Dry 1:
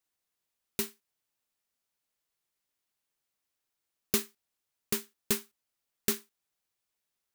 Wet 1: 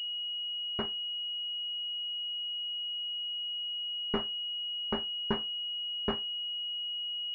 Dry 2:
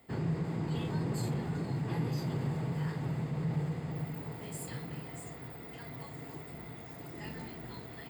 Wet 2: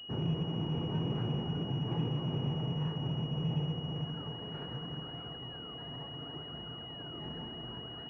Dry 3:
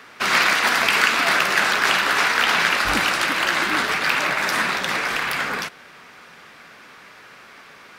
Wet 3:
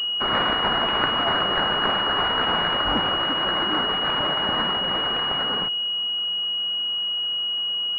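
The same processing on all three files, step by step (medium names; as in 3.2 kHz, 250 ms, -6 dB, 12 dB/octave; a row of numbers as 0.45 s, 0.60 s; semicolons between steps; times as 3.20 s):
class-D stage that switches slowly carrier 2.9 kHz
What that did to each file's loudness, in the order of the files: +0.5 LU, +0.5 LU, -3.0 LU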